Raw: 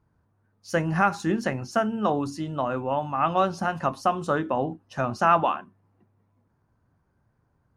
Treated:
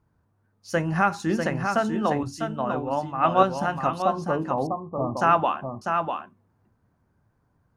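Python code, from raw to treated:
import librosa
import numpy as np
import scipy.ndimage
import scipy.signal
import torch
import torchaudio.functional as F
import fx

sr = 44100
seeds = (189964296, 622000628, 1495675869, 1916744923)

y = fx.cheby1_lowpass(x, sr, hz=1200.0, order=10, at=(4.02, 5.17))
y = y + 10.0 ** (-5.5 / 20.0) * np.pad(y, (int(647 * sr / 1000.0), 0))[:len(y)]
y = fx.band_widen(y, sr, depth_pct=100, at=(2.23, 3.43))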